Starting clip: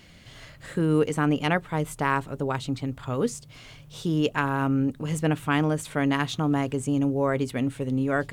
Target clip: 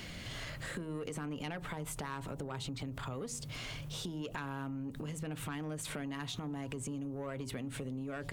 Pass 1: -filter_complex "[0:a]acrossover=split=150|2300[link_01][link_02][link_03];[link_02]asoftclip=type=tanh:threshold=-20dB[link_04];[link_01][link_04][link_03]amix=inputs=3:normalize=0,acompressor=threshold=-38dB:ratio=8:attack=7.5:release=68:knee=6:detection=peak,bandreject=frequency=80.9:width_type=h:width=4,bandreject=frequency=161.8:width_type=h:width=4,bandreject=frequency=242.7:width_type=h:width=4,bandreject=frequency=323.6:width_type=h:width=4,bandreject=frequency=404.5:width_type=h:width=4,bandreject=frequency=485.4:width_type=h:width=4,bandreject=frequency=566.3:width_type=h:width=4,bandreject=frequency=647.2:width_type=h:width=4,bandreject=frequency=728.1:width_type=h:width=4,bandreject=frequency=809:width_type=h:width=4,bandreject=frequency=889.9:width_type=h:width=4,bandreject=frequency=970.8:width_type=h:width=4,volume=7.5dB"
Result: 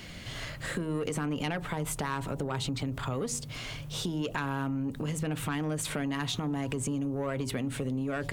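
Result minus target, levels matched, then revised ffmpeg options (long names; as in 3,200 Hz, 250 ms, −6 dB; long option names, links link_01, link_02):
downward compressor: peak gain reduction −8.5 dB
-filter_complex "[0:a]acrossover=split=150|2300[link_01][link_02][link_03];[link_02]asoftclip=type=tanh:threshold=-20dB[link_04];[link_01][link_04][link_03]amix=inputs=3:normalize=0,acompressor=threshold=-47.5dB:ratio=8:attack=7.5:release=68:knee=6:detection=peak,bandreject=frequency=80.9:width_type=h:width=4,bandreject=frequency=161.8:width_type=h:width=4,bandreject=frequency=242.7:width_type=h:width=4,bandreject=frequency=323.6:width_type=h:width=4,bandreject=frequency=404.5:width_type=h:width=4,bandreject=frequency=485.4:width_type=h:width=4,bandreject=frequency=566.3:width_type=h:width=4,bandreject=frequency=647.2:width_type=h:width=4,bandreject=frequency=728.1:width_type=h:width=4,bandreject=frequency=809:width_type=h:width=4,bandreject=frequency=889.9:width_type=h:width=4,bandreject=frequency=970.8:width_type=h:width=4,volume=7.5dB"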